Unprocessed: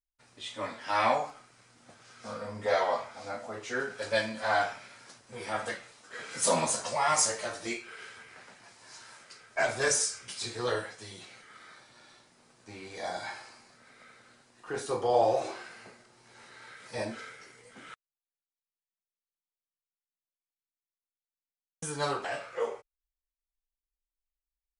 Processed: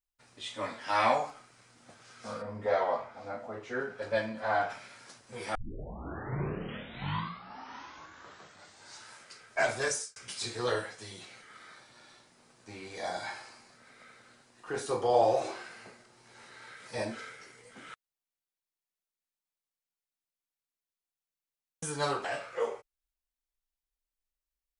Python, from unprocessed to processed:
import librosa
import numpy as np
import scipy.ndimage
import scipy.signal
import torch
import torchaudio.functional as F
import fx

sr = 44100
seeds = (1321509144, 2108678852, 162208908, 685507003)

y = fx.lowpass(x, sr, hz=1300.0, slope=6, at=(2.41, 4.69), fade=0.02)
y = fx.edit(y, sr, fx.tape_start(start_s=5.55, length_s=3.61),
    fx.fade_out_span(start_s=9.7, length_s=0.46), tone=tone)